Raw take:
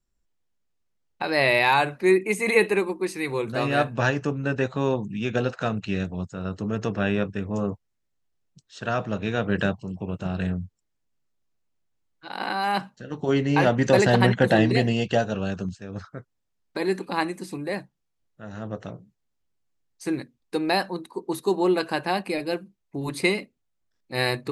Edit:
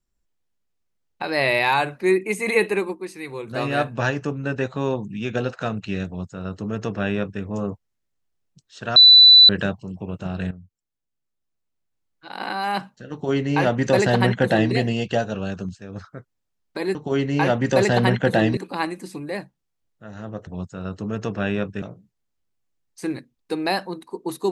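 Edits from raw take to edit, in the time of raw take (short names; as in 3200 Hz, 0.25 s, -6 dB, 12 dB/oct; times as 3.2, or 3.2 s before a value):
2.95–3.51 gain -5.5 dB
6.07–7.42 copy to 18.85
8.96–9.49 bleep 3980 Hz -6 dBFS
10.51–12.47 fade in, from -13.5 dB
13.12–14.74 copy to 16.95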